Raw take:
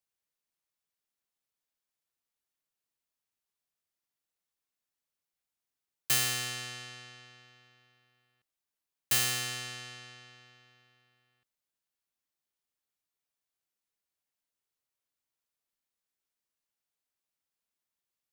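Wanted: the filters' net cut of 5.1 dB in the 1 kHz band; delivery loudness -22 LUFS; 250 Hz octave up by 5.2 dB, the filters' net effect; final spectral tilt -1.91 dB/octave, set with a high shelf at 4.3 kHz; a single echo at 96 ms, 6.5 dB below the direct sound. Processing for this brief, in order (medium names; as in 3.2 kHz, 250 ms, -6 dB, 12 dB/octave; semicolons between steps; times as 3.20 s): peaking EQ 250 Hz +6.5 dB; peaking EQ 1 kHz -7.5 dB; treble shelf 4.3 kHz -6 dB; delay 96 ms -6.5 dB; trim +12 dB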